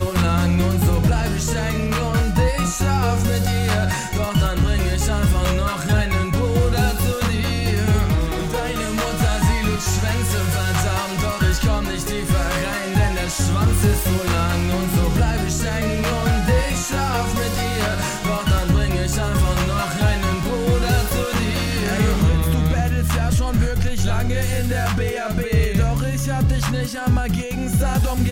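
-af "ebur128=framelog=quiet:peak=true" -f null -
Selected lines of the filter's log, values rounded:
Integrated loudness:
  I:         -20.1 LUFS
  Threshold: -30.1 LUFS
Loudness range:
  LRA:         1.2 LU
  Threshold: -40.1 LUFS
  LRA low:   -20.8 LUFS
  LRA high:  -19.5 LUFS
True peak:
  Peak:       -7.5 dBFS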